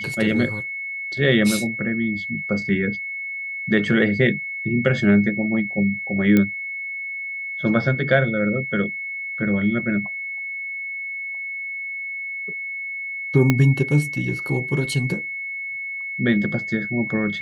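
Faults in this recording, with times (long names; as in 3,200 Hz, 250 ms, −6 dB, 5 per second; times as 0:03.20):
whistle 2,200 Hz −27 dBFS
0:06.37: click −7 dBFS
0:13.50: click −4 dBFS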